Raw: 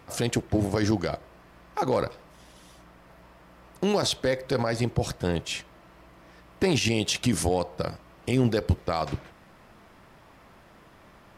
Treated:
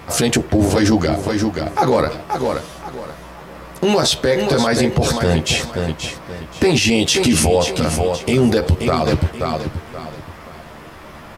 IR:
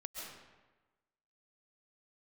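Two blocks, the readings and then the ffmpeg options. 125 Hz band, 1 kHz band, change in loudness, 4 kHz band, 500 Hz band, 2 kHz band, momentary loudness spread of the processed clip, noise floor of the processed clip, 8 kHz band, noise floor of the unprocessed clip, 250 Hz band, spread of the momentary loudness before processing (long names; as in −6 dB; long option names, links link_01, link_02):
+9.5 dB, +11.5 dB, +10.0 dB, +11.5 dB, +11.0 dB, +11.5 dB, 18 LU, −38 dBFS, +12.5 dB, −54 dBFS, +11.0 dB, 10 LU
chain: -filter_complex "[0:a]asplit=2[link_01][link_02];[link_02]adelay=13,volume=-3.5dB[link_03];[link_01][link_03]amix=inputs=2:normalize=0,aecho=1:1:528|1056|1584:0.316|0.0949|0.0285,alimiter=level_in=19dB:limit=-1dB:release=50:level=0:latency=1,volume=-5dB"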